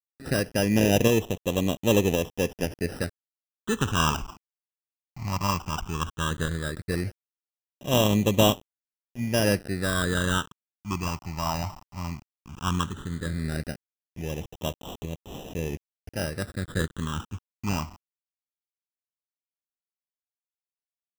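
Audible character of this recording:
a quantiser's noise floor 8 bits, dither none
tremolo saw up 0.93 Hz, depth 40%
aliases and images of a low sample rate 2,200 Hz, jitter 0%
phaser sweep stages 8, 0.15 Hz, lowest notch 460–1,500 Hz

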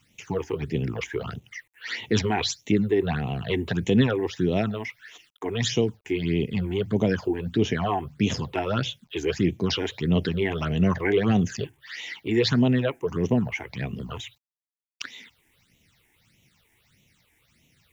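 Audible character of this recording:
a quantiser's noise floor 10 bits, dither none
phaser sweep stages 8, 1.6 Hz, lowest notch 160–1,500 Hz

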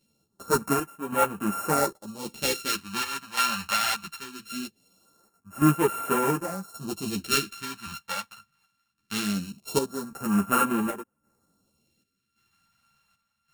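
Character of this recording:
a buzz of ramps at a fixed pitch in blocks of 32 samples
phaser sweep stages 2, 0.21 Hz, lowest notch 350–4,300 Hz
chopped level 0.89 Hz, depth 65%, duty 70%
a shimmering, thickened sound

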